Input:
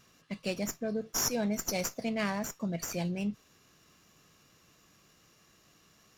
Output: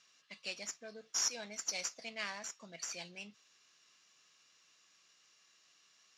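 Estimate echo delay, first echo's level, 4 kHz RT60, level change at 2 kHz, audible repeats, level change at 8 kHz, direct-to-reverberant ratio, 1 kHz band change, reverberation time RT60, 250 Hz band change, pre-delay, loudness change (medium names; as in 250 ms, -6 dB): no echo, no echo, no reverb, -4.0 dB, no echo, -2.5 dB, no reverb, -10.0 dB, no reverb, -22.5 dB, no reverb, -6.5 dB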